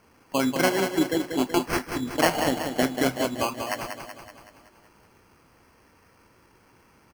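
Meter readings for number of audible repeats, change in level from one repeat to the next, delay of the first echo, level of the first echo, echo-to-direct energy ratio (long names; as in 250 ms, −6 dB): 6, −5.0 dB, 188 ms, −7.0 dB, −5.5 dB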